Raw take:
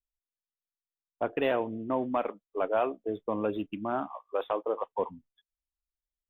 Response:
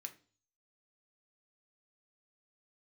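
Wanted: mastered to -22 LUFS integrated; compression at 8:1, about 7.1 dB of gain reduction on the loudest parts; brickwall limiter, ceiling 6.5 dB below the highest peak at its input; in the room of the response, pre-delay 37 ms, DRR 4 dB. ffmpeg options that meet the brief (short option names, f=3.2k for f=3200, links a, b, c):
-filter_complex "[0:a]acompressor=threshold=-30dB:ratio=8,alimiter=level_in=3dB:limit=-24dB:level=0:latency=1,volume=-3dB,asplit=2[a][b];[1:a]atrim=start_sample=2205,adelay=37[c];[b][c]afir=irnorm=-1:irlink=0,volume=0.5dB[d];[a][d]amix=inputs=2:normalize=0,volume=16dB"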